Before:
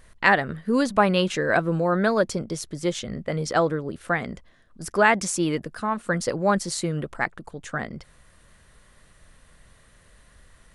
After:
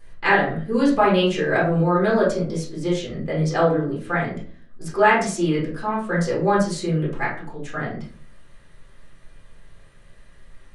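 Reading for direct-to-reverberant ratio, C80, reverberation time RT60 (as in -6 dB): -6.5 dB, 11.0 dB, 0.45 s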